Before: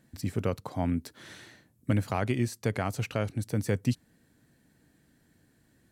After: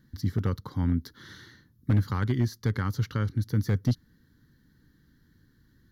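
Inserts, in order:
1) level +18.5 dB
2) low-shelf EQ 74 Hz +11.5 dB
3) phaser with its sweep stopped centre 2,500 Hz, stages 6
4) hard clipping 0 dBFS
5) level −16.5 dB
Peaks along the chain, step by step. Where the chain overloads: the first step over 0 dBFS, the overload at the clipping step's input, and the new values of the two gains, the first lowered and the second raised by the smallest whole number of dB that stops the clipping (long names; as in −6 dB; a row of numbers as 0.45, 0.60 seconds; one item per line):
+7.0, +6.5, +5.0, 0.0, −16.5 dBFS
step 1, 5.0 dB
step 1 +13.5 dB, step 5 −11.5 dB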